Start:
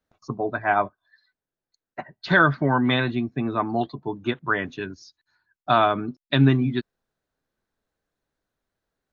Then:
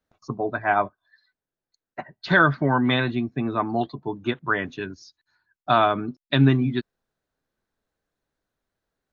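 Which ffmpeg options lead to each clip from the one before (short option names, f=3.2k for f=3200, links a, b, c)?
-af anull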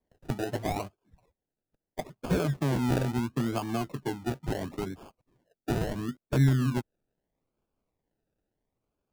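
-filter_complex "[0:a]acrossover=split=140|3000[a][b][c];[b]acompressor=threshold=-27dB:ratio=10[d];[a][d][c]amix=inputs=3:normalize=0,acrusher=samples=32:mix=1:aa=0.000001:lfo=1:lforange=19.2:lforate=0.75,tiltshelf=f=1.1k:g=3,volume=-2.5dB"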